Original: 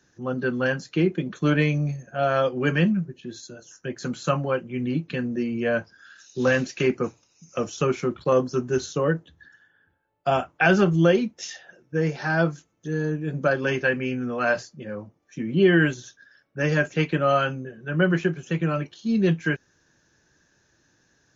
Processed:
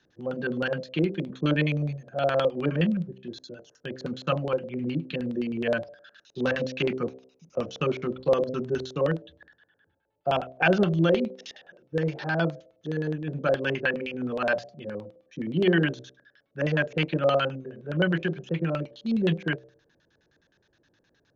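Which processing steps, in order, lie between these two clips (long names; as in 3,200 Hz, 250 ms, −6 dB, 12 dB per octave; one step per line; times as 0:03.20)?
dynamic equaliser 430 Hz, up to −4 dB, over −33 dBFS, Q 2.3
hum removal 64.51 Hz, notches 11
auto-filter low-pass square 9.6 Hz 540–3,600 Hz
level −3.5 dB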